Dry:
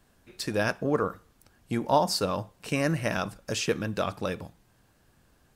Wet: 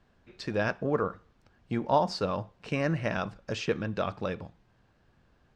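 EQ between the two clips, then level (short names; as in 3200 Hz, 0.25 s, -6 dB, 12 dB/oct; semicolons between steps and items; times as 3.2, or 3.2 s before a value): air absorption 160 m; bell 290 Hz -3 dB 0.21 oct; -1.0 dB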